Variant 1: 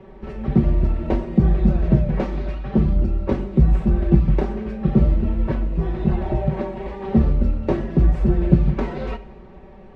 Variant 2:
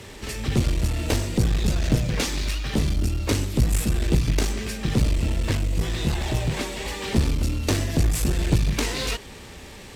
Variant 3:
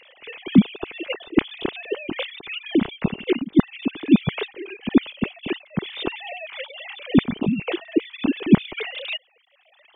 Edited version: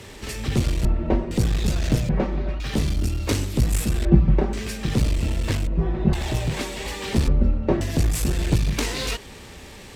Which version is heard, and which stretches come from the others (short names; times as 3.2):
2
0.85–1.31 from 1
2.09–2.6 from 1
4.05–4.53 from 1
5.67–6.13 from 1
7.28–7.81 from 1
not used: 3